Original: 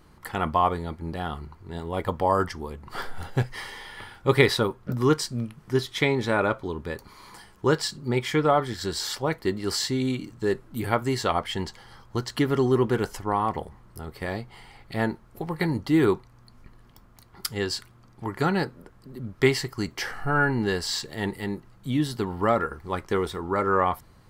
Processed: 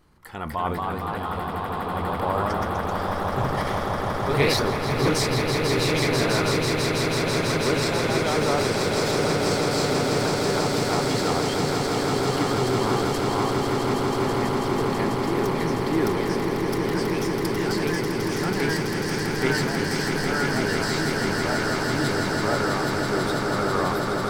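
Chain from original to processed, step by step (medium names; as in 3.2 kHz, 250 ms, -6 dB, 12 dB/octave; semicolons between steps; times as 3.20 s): ever faster or slower copies 261 ms, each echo +1 st, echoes 3; transient shaper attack -1 dB, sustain +7 dB; echo with a slow build-up 164 ms, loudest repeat 8, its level -7 dB; trim -5.5 dB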